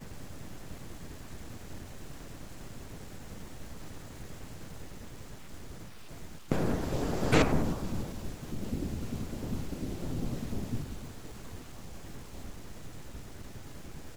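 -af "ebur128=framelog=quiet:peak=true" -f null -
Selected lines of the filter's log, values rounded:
Integrated loudness:
  I:         -37.5 LUFS
  Threshold: -48.0 LUFS
Loudness range:
  LRA:        14.8 LU
  Threshold: -57.2 LUFS
  LRA low:   -47.3 LUFS
  LRA high:  -32.5 LUFS
True peak:
  Peak:       -8.6 dBFS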